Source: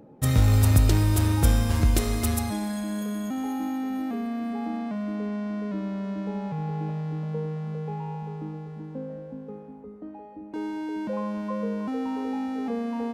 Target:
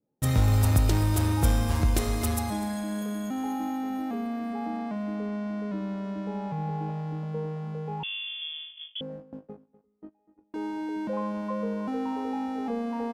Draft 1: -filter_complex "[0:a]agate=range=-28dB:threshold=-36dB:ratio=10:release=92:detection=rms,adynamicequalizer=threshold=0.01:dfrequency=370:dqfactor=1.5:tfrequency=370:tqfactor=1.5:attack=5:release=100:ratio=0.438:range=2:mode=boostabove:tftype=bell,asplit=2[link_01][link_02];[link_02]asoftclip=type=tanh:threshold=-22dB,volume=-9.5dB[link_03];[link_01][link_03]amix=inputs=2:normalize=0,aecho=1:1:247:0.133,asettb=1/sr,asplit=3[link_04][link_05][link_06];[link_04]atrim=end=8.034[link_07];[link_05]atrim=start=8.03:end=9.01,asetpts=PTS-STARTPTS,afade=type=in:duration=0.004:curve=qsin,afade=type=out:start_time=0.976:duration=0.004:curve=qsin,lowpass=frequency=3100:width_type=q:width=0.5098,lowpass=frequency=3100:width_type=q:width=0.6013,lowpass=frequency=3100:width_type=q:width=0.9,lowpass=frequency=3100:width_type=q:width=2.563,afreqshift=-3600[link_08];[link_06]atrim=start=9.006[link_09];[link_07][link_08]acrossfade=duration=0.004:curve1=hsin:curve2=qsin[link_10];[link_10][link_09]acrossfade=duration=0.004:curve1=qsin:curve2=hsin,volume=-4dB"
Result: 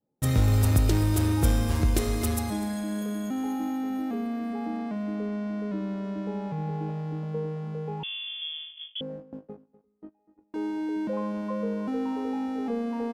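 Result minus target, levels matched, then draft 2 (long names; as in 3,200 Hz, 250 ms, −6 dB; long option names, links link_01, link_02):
1,000 Hz band −3.5 dB
-filter_complex "[0:a]agate=range=-28dB:threshold=-36dB:ratio=10:release=92:detection=rms,adynamicequalizer=threshold=0.01:dfrequency=850:dqfactor=1.5:tfrequency=850:tqfactor=1.5:attack=5:release=100:ratio=0.438:range=2:mode=boostabove:tftype=bell,asplit=2[link_01][link_02];[link_02]asoftclip=type=tanh:threshold=-22dB,volume=-9.5dB[link_03];[link_01][link_03]amix=inputs=2:normalize=0,aecho=1:1:247:0.133,asettb=1/sr,asplit=3[link_04][link_05][link_06];[link_04]atrim=end=8.034[link_07];[link_05]atrim=start=8.03:end=9.01,asetpts=PTS-STARTPTS,afade=type=in:duration=0.004:curve=qsin,afade=type=out:start_time=0.976:duration=0.004:curve=qsin,lowpass=frequency=3100:width_type=q:width=0.5098,lowpass=frequency=3100:width_type=q:width=0.6013,lowpass=frequency=3100:width_type=q:width=0.9,lowpass=frequency=3100:width_type=q:width=2.563,afreqshift=-3600[link_08];[link_06]atrim=start=9.006[link_09];[link_07][link_08]acrossfade=duration=0.004:curve1=hsin:curve2=qsin[link_10];[link_10][link_09]acrossfade=duration=0.004:curve1=qsin:curve2=hsin,volume=-4dB"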